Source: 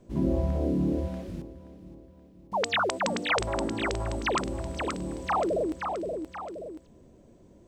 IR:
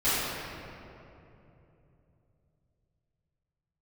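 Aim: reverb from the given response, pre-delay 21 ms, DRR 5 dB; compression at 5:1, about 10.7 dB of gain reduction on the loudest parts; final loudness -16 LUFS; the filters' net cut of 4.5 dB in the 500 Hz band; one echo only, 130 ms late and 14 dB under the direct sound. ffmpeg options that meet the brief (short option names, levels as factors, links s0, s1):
-filter_complex "[0:a]equalizer=f=500:t=o:g=-6,acompressor=threshold=0.0158:ratio=5,aecho=1:1:130:0.2,asplit=2[s0][s1];[1:a]atrim=start_sample=2205,adelay=21[s2];[s1][s2]afir=irnorm=-1:irlink=0,volume=0.106[s3];[s0][s3]amix=inputs=2:normalize=0,volume=13.3"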